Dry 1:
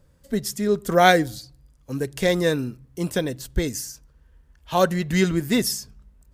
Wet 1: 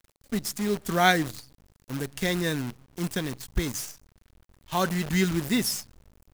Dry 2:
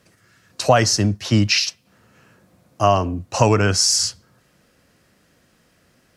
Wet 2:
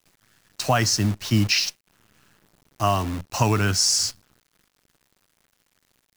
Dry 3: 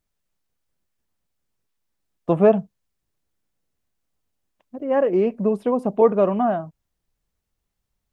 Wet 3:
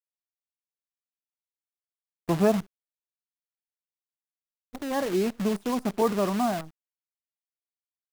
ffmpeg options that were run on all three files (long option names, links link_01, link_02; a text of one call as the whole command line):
ffmpeg -i in.wav -af "equalizer=frequency=520:width=2.1:gain=-9.5,acrusher=bits=6:dc=4:mix=0:aa=0.000001,volume=-3dB" out.wav